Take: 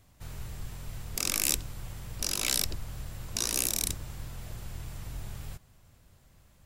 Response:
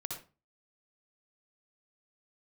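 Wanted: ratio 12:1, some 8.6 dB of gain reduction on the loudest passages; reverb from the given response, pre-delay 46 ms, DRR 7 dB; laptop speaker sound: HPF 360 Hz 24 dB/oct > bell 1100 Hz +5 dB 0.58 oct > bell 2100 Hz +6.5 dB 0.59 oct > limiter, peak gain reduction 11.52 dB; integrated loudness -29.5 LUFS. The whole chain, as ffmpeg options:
-filter_complex "[0:a]acompressor=threshold=-31dB:ratio=12,asplit=2[a][b];[1:a]atrim=start_sample=2205,adelay=46[c];[b][c]afir=irnorm=-1:irlink=0,volume=-7dB[d];[a][d]amix=inputs=2:normalize=0,highpass=f=360:w=0.5412,highpass=f=360:w=1.3066,equalizer=f=1.1k:t=o:w=0.58:g=5,equalizer=f=2.1k:t=o:w=0.59:g=6.5,volume=14.5dB,alimiter=limit=-13.5dB:level=0:latency=1"

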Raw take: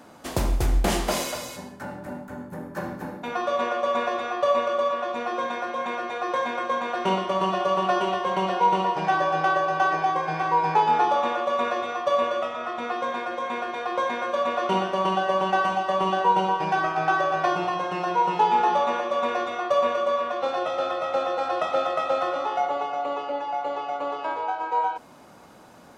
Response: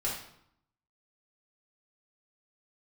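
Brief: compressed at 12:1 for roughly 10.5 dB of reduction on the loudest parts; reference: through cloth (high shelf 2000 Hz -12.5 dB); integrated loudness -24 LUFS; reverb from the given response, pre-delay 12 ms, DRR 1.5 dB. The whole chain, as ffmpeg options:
-filter_complex "[0:a]acompressor=threshold=-27dB:ratio=12,asplit=2[a][b];[1:a]atrim=start_sample=2205,adelay=12[c];[b][c]afir=irnorm=-1:irlink=0,volume=-7dB[d];[a][d]amix=inputs=2:normalize=0,highshelf=f=2k:g=-12.5,volume=7.5dB"

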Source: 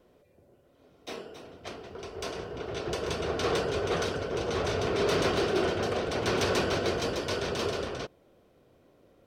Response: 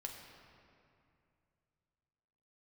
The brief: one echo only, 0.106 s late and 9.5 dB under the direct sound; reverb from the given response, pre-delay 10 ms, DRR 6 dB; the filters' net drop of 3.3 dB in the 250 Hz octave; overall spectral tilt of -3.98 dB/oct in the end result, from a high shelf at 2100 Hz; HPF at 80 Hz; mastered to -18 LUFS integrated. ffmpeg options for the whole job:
-filter_complex "[0:a]highpass=80,equalizer=f=250:t=o:g=-5,highshelf=f=2.1k:g=-6,aecho=1:1:106:0.335,asplit=2[a][b];[1:a]atrim=start_sample=2205,adelay=10[c];[b][c]afir=irnorm=-1:irlink=0,volume=-3.5dB[d];[a][d]amix=inputs=2:normalize=0,volume=12.5dB"

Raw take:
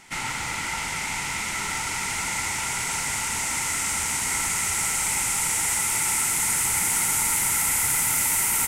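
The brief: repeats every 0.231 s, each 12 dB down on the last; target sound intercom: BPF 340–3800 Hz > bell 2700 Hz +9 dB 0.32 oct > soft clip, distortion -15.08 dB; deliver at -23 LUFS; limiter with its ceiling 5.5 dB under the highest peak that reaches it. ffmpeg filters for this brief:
-af "alimiter=limit=-16dB:level=0:latency=1,highpass=340,lowpass=3.8k,equalizer=f=2.7k:t=o:w=0.32:g=9,aecho=1:1:231|462|693:0.251|0.0628|0.0157,asoftclip=threshold=-25.5dB,volume=7dB"

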